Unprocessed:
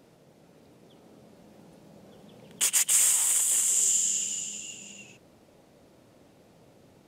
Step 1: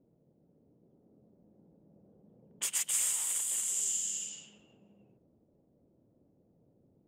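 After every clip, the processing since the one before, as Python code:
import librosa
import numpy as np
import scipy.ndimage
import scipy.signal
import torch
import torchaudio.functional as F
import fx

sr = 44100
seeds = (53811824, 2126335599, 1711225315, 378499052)

y = fx.env_lowpass(x, sr, base_hz=360.0, full_db=-25.0)
y = y * 10.0 ** (-8.5 / 20.0)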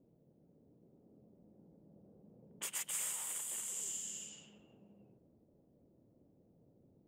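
y = fx.peak_eq(x, sr, hz=6300.0, db=-9.5, octaves=2.7)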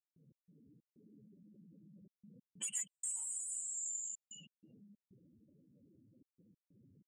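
y = fx.spec_expand(x, sr, power=3.2)
y = fx.step_gate(y, sr, bpm=94, pattern='.x.xx.xxxxxxx', floor_db=-60.0, edge_ms=4.5)
y = fx.rider(y, sr, range_db=10, speed_s=0.5)
y = y * 10.0 ** (2.0 / 20.0)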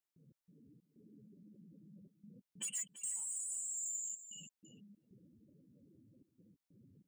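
y = 10.0 ** (-35.0 / 20.0) * np.tanh(x / 10.0 ** (-35.0 / 20.0))
y = y + 10.0 ** (-13.5 / 20.0) * np.pad(y, (int(337 * sr / 1000.0), 0))[:len(y)]
y = y * 10.0 ** (1.5 / 20.0)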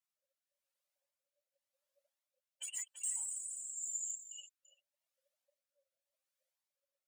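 y = fx.rotary(x, sr, hz=0.9)
y = fx.brickwall_highpass(y, sr, low_hz=530.0)
y = fx.comb_cascade(y, sr, direction='rising', hz=1.8)
y = y * 10.0 ** (7.0 / 20.0)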